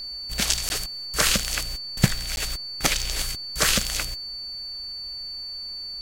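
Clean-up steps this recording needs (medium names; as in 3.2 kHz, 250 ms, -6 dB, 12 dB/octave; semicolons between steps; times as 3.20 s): band-stop 4.5 kHz, Q 30; interpolate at 0.69/2.36 s, 11 ms; expander -27 dBFS, range -21 dB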